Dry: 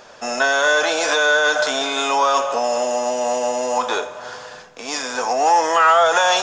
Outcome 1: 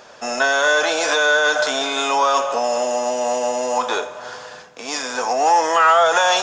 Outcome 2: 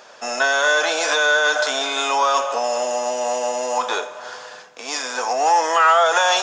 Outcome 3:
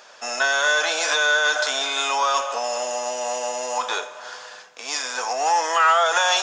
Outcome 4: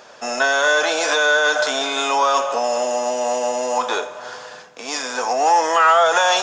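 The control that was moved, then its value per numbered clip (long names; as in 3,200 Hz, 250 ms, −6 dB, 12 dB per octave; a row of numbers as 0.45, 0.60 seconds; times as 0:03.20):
high-pass filter, corner frequency: 62, 450, 1,200, 170 Hertz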